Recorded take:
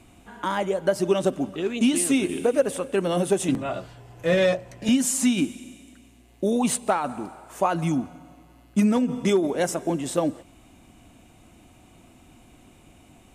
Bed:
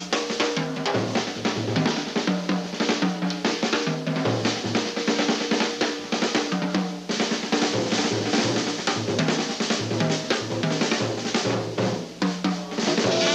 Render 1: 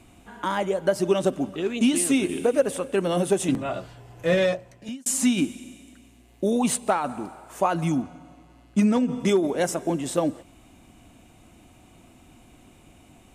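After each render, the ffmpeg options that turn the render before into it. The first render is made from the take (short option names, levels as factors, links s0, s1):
-filter_complex "[0:a]asettb=1/sr,asplit=3[s0][s1][s2];[s0]atrim=end=8.024[s3];[s1]atrim=start=8.02:end=9.2,asetpts=PTS-STARTPTS,afade=t=in:d=0.004:c=qsin,afade=t=out:st=1.176:d=0.004:c=qsin,lowpass=9000[s4];[s2]atrim=start=9.196[s5];[s3][s4]acrossfade=d=0.004:c1=hsin:c2=qsin[s6];[s6][s5]acrossfade=d=0.004:c1=qsin:c2=hsin,asplit=2[s7][s8];[s7]atrim=end=5.06,asetpts=PTS-STARTPTS,afade=t=out:st=4.32:d=0.74[s9];[s8]atrim=start=5.06,asetpts=PTS-STARTPTS,afade=t=in:d=0.004:c=hsin[s10];[s9][s10]concat=n=2:v=0:a=1"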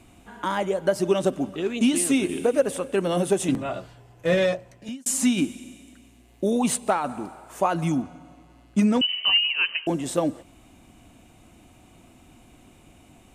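-filter_complex "[0:a]asettb=1/sr,asplit=3[s0][s1][s2];[s0]atrim=end=9.014[s3];[s1]atrim=start=9.01:end=9.87,asetpts=PTS-STARTPTS,afade=t=in:d=0.004:c=qsin,afade=t=out:st=0.856:d=0.004:c=qsin,lowpass=f=2700:t=q:w=0.5098,lowpass=f=2700:t=q:w=0.6013,lowpass=f=2700:t=q:w=0.9,lowpass=f=2700:t=q:w=2.563,afreqshift=-3200[s4];[s2]atrim=start=9.866[s5];[s3][s4]acrossfade=d=0.004:c1=hsin:c2=qsin[s6];[s6][s5]acrossfade=d=0.004:c1=qsin:c2=hsin,asplit=2[s7][s8];[s7]atrim=end=4.25,asetpts=PTS-STARTPTS,afade=t=out:st=3.61:d=0.64:silence=0.421697[s9];[s8]atrim=start=4.25,asetpts=PTS-STARTPTS,afade=t=in:d=0.004:c=hsin:silence=0.421697[s10];[s9][s10]concat=n=2:v=0:a=1"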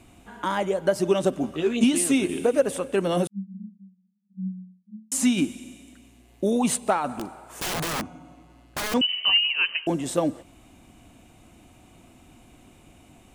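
-filter_complex "[0:a]asettb=1/sr,asplit=3[s0][s1][s2];[s0]atrim=end=1.424[s3];[s1]atrim=start=1.42:end=1.84,asetpts=PTS-STARTPTS,afade=t=in:d=0.004:c=qsin,afade=t=out:st=0.416:d=0.004:c=qsin,asplit=2[s4][s5];[s5]adelay=13,volume=0.668[s6];[s4][s6]amix=inputs=2:normalize=0,atrim=end_sample=18522[s7];[s2]atrim=start=1.836[s8];[s3][s7]acrossfade=d=0.004:c1=hsin:c2=qsin[s9];[s9][s8]acrossfade=d=0.004:c1=qsin:c2=hsin,asettb=1/sr,asplit=3[s10][s11][s12];[s10]atrim=end=3.274[s13];[s11]atrim=start=3.27:end=5.12,asetpts=PTS-STARTPTS,afade=t=in:d=0.004:c=qsin,afade=t=out:st=1.846:d=0.004:c=qsin,asuperpass=centerf=200:order=20:qfactor=5.6[s14];[s12]atrim=start=5.116[s15];[s13][s14]acrossfade=d=0.004:c1=hsin:c2=qsin[s16];[s16][s15]acrossfade=d=0.004:c1=qsin:c2=hsin,asettb=1/sr,asplit=3[s17][s18][s19];[s17]atrim=end=7.144[s20];[s18]atrim=start=7.14:end=8.94,asetpts=PTS-STARTPTS,afade=t=in:d=0.004:c=qsin,afade=t=out:st=1.796:d=0.004:c=qsin,aeval=exprs='(mod(15*val(0)+1,2)-1)/15':c=same[s21];[s19]atrim=start=8.936[s22];[s20][s21]acrossfade=d=0.004:c1=hsin:c2=qsin[s23];[s23][s22]acrossfade=d=0.004:c1=qsin:c2=hsin"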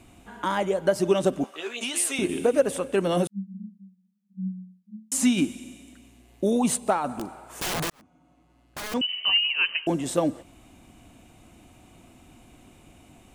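-filter_complex "[0:a]asettb=1/sr,asplit=3[s0][s1][s2];[s0]atrim=end=1.444[s3];[s1]atrim=start=1.44:end=2.19,asetpts=PTS-STARTPTS,afade=t=in:d=0.004:c=qsin,afade=t=out:st=0.746:d=0.004:c=qsin,highpass=740[s4];[s2]atrim=start=2.186[s5];[s3][s4]acrossfade=d=0.004:c1=hsin:c2=qsin[s6];[s6][s5]acrossfade=d=0.004:c1=qsin:c2=hsin,asettb=1/sr,asplit=3[s7][s8][s9];[s7]atrim=end=6.604[s10];[s8]atrim=start=6.6:end=7.28,asetpts=PTS-STARTPTS,afade=t=in:d=0.004:c=qsin,afade=t=out:st=0.676:d=0.004:c=qsin,equalizer=f=2400:t=o:w=1.8:g=-3.5[s11];[s9]atrim=start=7.276[s12];[s10][s11]acrossfade=d=0.004:c1=hsin:c2=qsin[s13];[s13][s12]acrossfade=d=0.004:c1=qsin:c2=hsin,asplit=2[s14][s15];[s14]atrim=end=7.9,asetpts=PTS-STARTPTS,afade=t=out:st=7.896:d=0.004:c=hsin[s16];[s15]atrim=start=7.9,asetpts=PTS-STARTPTS,afade=t=in:d=1.78[s17];[s16][s17]concat=n=2:v=0:a=1"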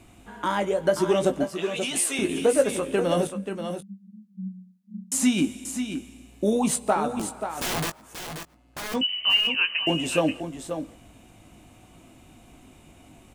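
-filter_complex "[0:a]asplit=2[s0][s1];[s1]adelay=19,volume=0.376[s2];[s0][s2]amix=inputs=2:normalize=0,asplit=2[s3][s4];[s4]aecho=0:1:533:0.376[s5];[s3][s5]amix=inputs=2:normalize=0"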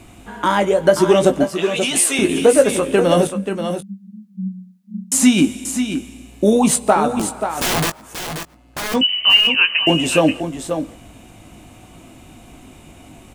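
-af "volume=2.82,alimiter=limit=0.891:level=0:latency=1"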